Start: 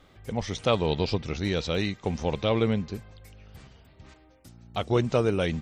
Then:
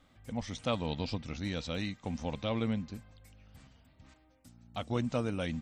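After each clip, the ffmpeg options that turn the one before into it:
-af "equalizer=f=250:t=o:w=0.33:g=7,equalizer=f=400:t=o:w=0.33:g=-11,equalizer=f=8000:t=o:w=0.33:g=5,volume=0.398"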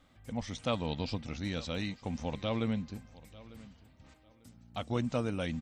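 -af "aecho=1:1:897|1794:0.1|0.024"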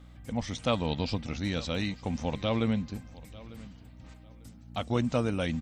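-af "aeval=exprs='val(0)+0.002*(sin(2*PI*60*n/s)+sin(2*PI*2*60*n/s)/2+sin(2*PI*3*60*n/s)/3+sin(2*PI*4*60*n/s)/4+sin(2*PI*5*60*n/s)/5)':c=same,volume=1.68"

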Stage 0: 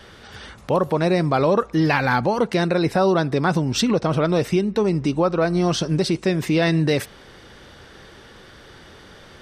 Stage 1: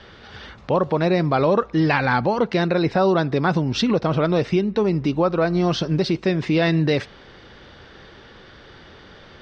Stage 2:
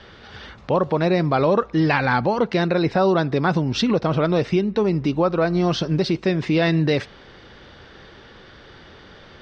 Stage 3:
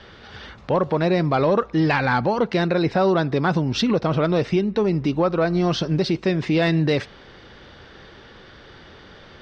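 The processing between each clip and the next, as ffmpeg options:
-af "lowpass=f=5000:w=0.5412,lowpass=f=5000:w=1.3066"
-af anull
-af "asoftclip=type=tanh:threshold=0.447"

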